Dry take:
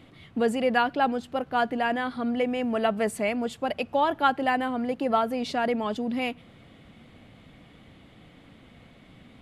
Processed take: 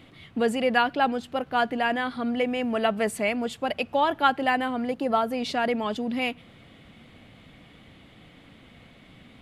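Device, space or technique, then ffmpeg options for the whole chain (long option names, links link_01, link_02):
presence and air boost: -filter_complex "[0:a]equalizer=frequency=2800:width_type=o:width=1.9:gain=3.5,highshelf=frequency=11000:gain=4,asettb=1/sr,asplit=3[link_01][link_02][link_03];[link_01]atrim=end=4.914[link_04];[link_02]atrim=start=4.91:end=5.32,asetpts=PTS-STARTPTS,afade=type=in:duration=0.004:curve=qsin,afade=type=out:start_time=0.406:duration=0.004:curve=qsin,equalizer=frequency=2400:width_type=o:width=1.2:gain=-5[link_05];[link_03]atrim=start=5.316[link_06];[link_04][link_05]acrossfade=duration=0.004:curve1=hsin:curve2=qsin[link_07];[link_07][link_06]acrossfade=duration=0.004:curve1=qsin:curve2=hsin"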